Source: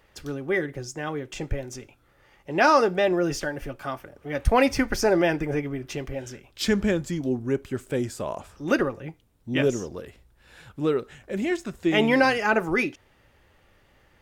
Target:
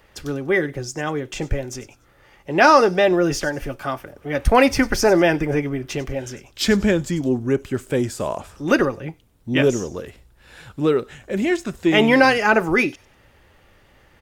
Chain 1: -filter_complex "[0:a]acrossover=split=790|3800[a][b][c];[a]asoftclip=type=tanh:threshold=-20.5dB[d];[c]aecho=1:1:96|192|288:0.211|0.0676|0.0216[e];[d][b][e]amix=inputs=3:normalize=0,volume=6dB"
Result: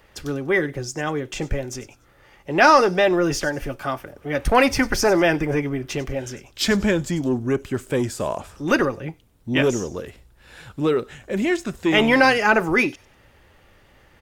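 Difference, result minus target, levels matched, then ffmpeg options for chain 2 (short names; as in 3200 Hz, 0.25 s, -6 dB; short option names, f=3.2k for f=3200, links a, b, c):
soft clip: distortion +11 dB
-filter_complex "[0:a]acrossover=split=790|3800[a][b][c];[a]asoftclip=type=tanh:threshold=-12dB[d];[c]aecho=1:1:96|192|288:0.211|0.0676|0.0216[e];[d][b][e]amix=inputs=3:normalize=0,volume=6dB"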